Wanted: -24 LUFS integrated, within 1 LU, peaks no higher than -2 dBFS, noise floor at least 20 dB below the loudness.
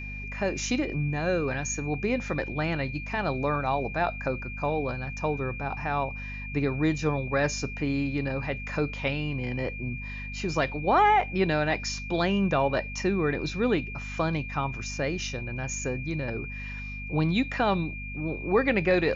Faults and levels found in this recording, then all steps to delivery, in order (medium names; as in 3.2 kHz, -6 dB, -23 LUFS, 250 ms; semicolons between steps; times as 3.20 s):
hum 50 Hz; highest harmonic 250 Hz; hum level -36 dBFS; steady tone 2.4 kHz; tone level -38 dBFS; loudness -28.5 LUFS; peak level -13.0 dBFS; loudness target -24.0 LUFS
-> hum notches 50/100/150/200/250 Hz; band-stop 2.4 kHz, Q 30; trim +4.5 dB